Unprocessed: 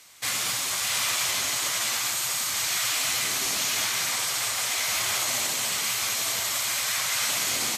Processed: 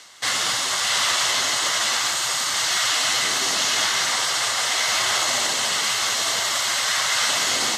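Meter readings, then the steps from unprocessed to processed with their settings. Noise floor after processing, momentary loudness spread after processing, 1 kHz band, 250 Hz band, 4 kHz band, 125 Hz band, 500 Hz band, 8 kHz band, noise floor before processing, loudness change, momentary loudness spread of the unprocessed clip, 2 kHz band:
−24 dBFS, 2 LU, +8.0 dB, +4.5 dB, +6.5 dB, +1.0 dB, +7.5 dB, +3.0 dB, −29 dBFS, +4.5 dB, 2 LU, +6.0 dB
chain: low-shelf EQ 200 Hz −11.5 dB
notch filter 2,400 Hz, Q 5.8
reversed playback
upward compression, threshold −35 dBFS
reversed playback
high-frequency loss of the air 68 metres
level +9 dB

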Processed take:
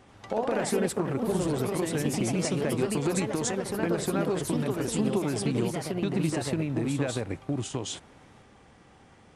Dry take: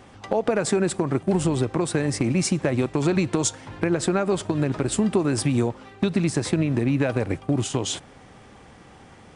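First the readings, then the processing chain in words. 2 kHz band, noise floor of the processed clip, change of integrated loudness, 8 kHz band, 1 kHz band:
−5.0 dB, −56 dBFS, −5.0 dB, −5.0 dB, −3.5 dB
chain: delay with pitch and tempo change per echo 88 ms, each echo +2 semitones, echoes 3
level −7.5 dB

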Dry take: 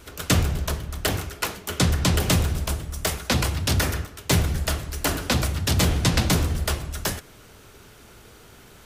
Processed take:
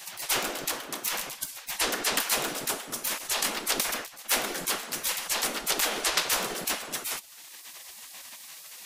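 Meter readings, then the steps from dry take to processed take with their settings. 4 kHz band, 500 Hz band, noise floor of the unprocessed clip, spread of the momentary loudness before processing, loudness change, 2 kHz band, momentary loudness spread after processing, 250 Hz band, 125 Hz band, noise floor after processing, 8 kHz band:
−1.5 dB, −6.0 dB, −49 dBFS, 8 LU, −4.0 dB, −1.5 dB, 17 LU, −13.5 dB, −29.5 dB, −47 dBFS, +0.5 dB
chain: gate on every frequency bin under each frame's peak −20 dB weak
multiband upward and downward compressor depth 40%
level +3.5 dB

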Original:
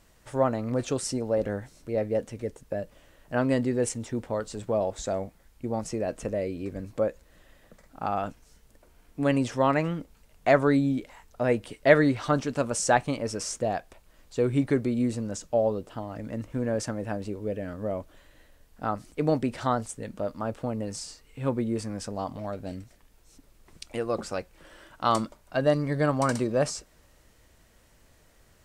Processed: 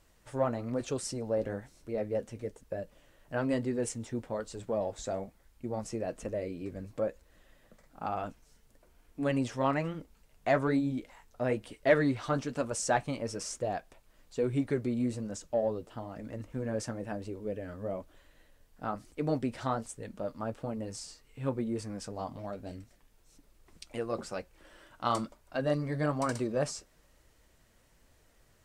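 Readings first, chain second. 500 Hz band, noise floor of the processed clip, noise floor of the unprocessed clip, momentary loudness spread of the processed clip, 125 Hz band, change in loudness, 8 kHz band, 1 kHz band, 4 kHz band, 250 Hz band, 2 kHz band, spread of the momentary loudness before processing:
−6.0 dB, −65 dBFS, −60 dBFS, 12 LU, −5.5 dB, −6.0 dB, −5.5 dB, −6.0 dB, −5.5 dB, −5.5 dB, −6.0 dB, 12 LU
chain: in parallel at −11 dB: soft clipping −19.5 dBFS, distortion −12 dB
on the sum: flanger 1.1 Hz, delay 1.8 ms, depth 7.8 ms, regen −51%
level −3.5 dB

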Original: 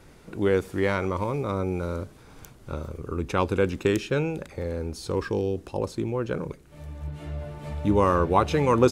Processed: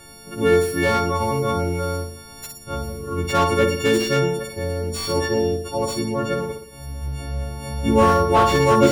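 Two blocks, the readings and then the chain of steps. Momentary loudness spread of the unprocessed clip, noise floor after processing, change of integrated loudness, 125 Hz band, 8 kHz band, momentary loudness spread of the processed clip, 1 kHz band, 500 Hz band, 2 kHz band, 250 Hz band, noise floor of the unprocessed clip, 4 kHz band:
16 LU, −42 dBFS, +6.0 dB, +4.5 dB, +12.0 dB, 15 LU, +7.5 dB, +5.5 dB, +7.5 dB, +4.5 dB, −51 dBFS, +12.0 dB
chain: every partial snapped to a pitch grid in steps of 4 semitones
flutter between parallel walls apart 10.1 metres, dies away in 0.63 s
slew-rate limiting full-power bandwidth 150 Hz
level +4 dB

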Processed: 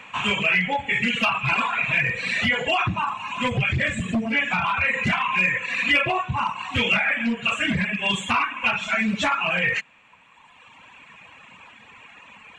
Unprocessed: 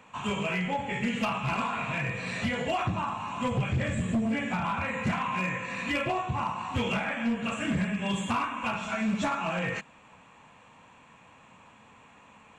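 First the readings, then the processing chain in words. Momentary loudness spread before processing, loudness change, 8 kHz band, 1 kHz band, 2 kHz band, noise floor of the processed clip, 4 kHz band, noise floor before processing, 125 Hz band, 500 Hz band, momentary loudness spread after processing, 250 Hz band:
3 LU, +8.0 dB, +4.5 dB, +5.5 dB, +12.0 dB, −52 dBFS, +11.5 dB, −56 dBFS, +2.5 dB, +3.0 dB, 5 LU, +2.0 dB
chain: reverb reduction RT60 1.9 s
parametric band 2,400 Hz +12.5 dB 1.7 octaves
in parallel at −3 dB: brickwall limiter −20.5 dBFS, peak gain reduction 10 dB

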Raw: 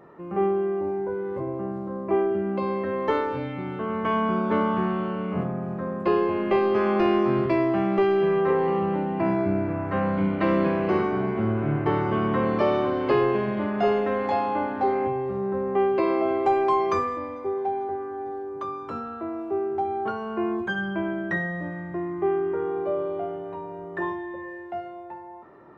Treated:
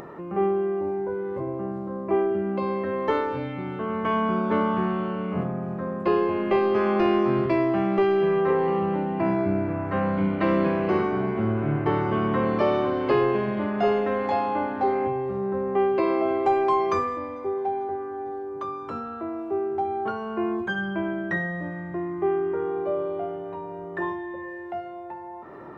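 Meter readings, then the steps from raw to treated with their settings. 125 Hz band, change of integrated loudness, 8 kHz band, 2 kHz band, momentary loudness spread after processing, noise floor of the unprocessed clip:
0.0 dB, 0.0 dB, can't be measured, 0.0 dB, 11 LU, −38 dBFS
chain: upward compression, threshold −32 dBFS

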